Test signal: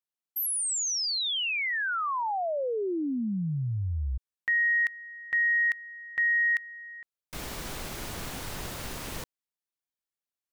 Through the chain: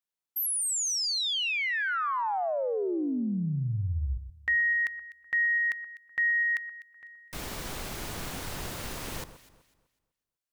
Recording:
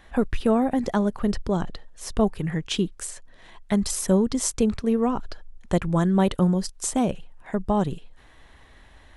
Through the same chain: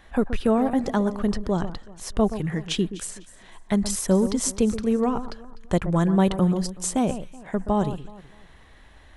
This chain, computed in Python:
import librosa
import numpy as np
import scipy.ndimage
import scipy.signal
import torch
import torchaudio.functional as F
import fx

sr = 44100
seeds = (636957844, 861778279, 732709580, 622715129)

y = fx.echo_alternate(x, sr, ms=125, hz=1600.0, feedback_pct=52, wet_db=-11.5)